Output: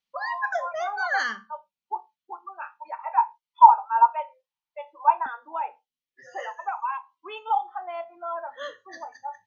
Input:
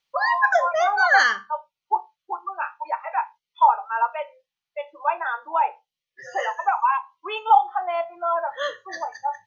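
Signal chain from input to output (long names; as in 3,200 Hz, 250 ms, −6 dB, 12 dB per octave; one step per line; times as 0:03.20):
parametric band 220 Hz +14.5 dB 0.44 octaves, from 0:02.99 930 Hz, from 0:05.26 260 Hz
level −9 dB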